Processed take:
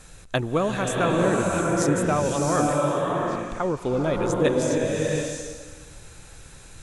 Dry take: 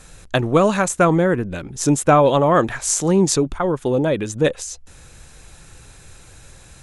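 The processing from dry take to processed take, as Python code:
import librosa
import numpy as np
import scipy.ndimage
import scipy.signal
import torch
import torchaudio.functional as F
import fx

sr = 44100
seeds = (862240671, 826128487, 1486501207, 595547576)

y = fx.rider(x, sr, range_db=10, speed_s=0.5)
y = fx.double_bandpass(y, sr, hz=1600.0, octaves=1.1, at=(2.73, 3.5))
y = fx.rev_bloom(y, sr, seeds[0], attack_ms=710, drr_db=-1.5)
y = F.gain(torch.from_numpy(y), -8.0).numpy()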